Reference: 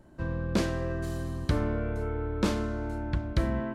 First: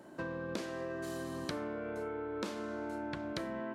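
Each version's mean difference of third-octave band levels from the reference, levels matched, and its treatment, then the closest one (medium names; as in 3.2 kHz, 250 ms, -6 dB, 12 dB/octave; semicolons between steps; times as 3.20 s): 5.0 dB: high-pass 270 Hz 12 dB/octave; compression 10:1, threshold -42 dBFS, peak gain reduction 17.5 dB; trim +6 dB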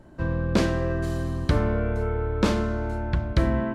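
1.0 dB: treble shelf 7.1 kHz -7 dB; de-hum 49.12 Hz, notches 7; trim +6 dB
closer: second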